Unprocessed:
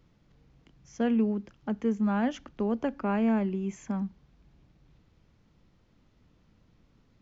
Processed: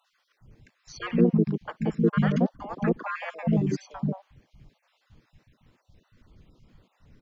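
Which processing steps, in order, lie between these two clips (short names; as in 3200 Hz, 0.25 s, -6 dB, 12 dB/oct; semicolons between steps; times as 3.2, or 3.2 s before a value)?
random spectral dropouts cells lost 56%; three bands offset in time highs, lows, mids 0.13/0.18 s, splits 220/850 Hz; harmoniser -5 st 0 dB; gain +7 dB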